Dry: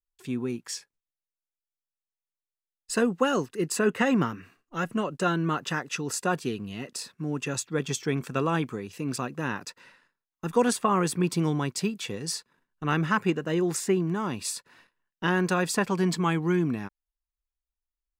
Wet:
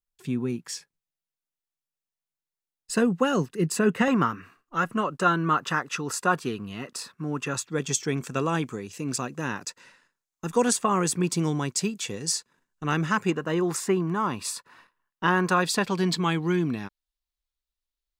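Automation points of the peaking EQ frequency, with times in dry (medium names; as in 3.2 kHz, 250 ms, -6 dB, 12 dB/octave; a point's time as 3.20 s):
peaking EQ +8.5 dB 0.8 oct
160 Hz
from 4.08 s 1.2 kHz
from 7.67 s 7 kHz
from 13.31 s 1.1 kHz
from 15.62 s 3.9 kHz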